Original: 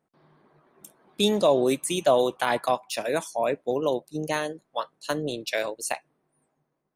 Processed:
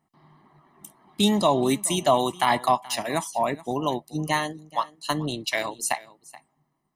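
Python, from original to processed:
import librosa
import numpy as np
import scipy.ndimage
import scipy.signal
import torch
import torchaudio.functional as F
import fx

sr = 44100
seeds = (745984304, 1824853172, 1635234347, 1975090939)

p1 = x + 0.73 * np.pad(x, (int(1.0 * sr / 1000.0), 0))[:len(x)]
p2 = p1 + fx.echo_single(p1, sr, ms=428, db=-20.0, dry=0)
y = F.gain(torch.from_numpy(p2), 2.0).numpy()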